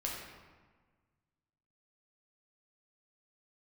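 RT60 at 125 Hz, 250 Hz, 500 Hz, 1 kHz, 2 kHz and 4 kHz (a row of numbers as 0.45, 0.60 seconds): 2.1, 1.8, 1.4, 1.5, 1.3, 0.90 seconds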